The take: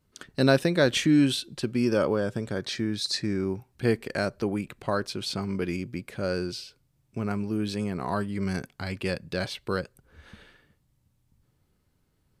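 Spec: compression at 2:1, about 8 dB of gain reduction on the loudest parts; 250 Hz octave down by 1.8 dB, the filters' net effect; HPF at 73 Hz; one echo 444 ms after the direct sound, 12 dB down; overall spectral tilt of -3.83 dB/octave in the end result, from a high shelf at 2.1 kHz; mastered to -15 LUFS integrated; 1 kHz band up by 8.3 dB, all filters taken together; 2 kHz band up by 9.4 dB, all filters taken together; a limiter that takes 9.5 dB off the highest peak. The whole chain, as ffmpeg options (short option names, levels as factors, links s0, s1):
-af "highpass=73,equalizer=f=250:t=o:g=-3,equalizer=f=1000:t=o:g=7.5,equalizer=f=2000:t=o:g=6.5,highshelf=f=2100:g=6,acompressor=threshold=0.0501:ratio=2,alimiter=limit=0.141:level=0:latency=1,aecho=1:1:444:0.251,volume=5.62"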